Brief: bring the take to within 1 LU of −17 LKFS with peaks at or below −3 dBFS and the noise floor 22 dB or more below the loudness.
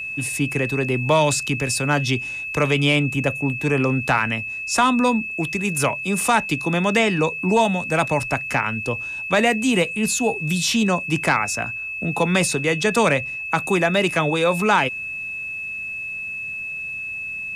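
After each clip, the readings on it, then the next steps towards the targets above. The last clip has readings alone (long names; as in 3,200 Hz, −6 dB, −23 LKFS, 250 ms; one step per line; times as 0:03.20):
interfering tone 2,600 Hz; level of the tone −27 dBFS; integrated loudness −20.5 LKFS; sample peak −7.0 dBFS; target loudness −17.0 LKFS
→ notch filter 2,600 Hz, Q 30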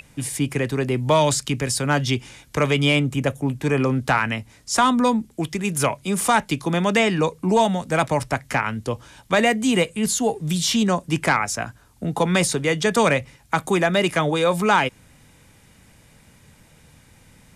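interfering tone none found; integrated loudness −21.0 LKFS; sample peak −7.5 dBFS; target loudness −17.0 LKFS
→ level +4 dB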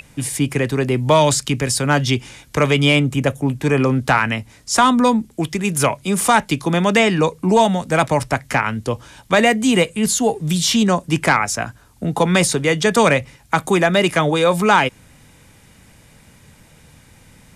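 integrated loudness −17.0 LKFS; sample peak −3.5 dBFS; background noise floor −50 dBFS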